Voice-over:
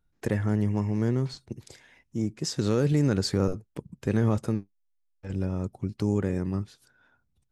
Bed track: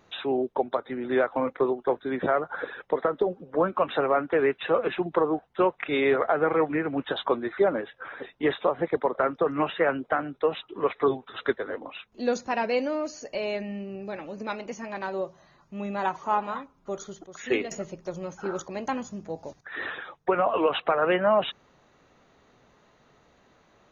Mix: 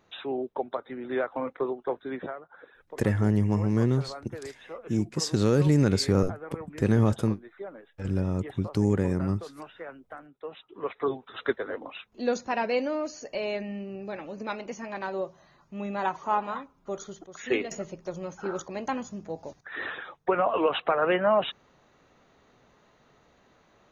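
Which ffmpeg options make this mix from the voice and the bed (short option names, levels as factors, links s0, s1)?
-filter_complex "[0:a]adelay=2750,volume=1.26[s0];[1:a]volume=3.76,afade=t=out:st=2.14:d=0.22:silence=0.237137,afade=t=in:st=10.38:d=1.18:silence=0.149624[s1];[s0][s1]amix=inputs=2:normalize=0"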